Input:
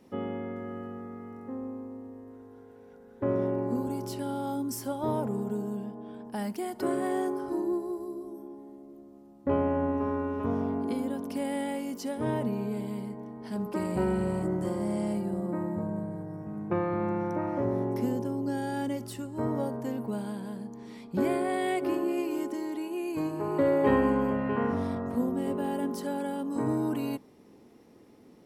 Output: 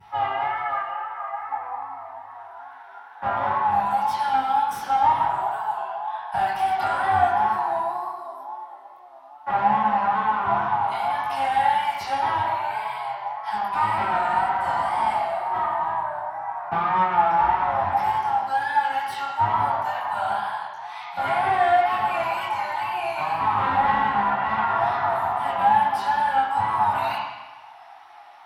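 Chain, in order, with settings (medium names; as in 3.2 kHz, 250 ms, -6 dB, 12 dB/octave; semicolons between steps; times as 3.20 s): elliptic high-pass 760 Hz, stop band 40 dB; compression 4:1, threshold -40 dBFS, peak gain reduction 10.5 dB; chorus 0.51 Hz, delay 20 ms, depth 3.7 ms; wow and flutter 92 cents; one-sided clip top -46.5 dBFS; reverberation RT60 1.1 s, pre-delay 3 ms, DRR -13 dB; trim +7.5 dB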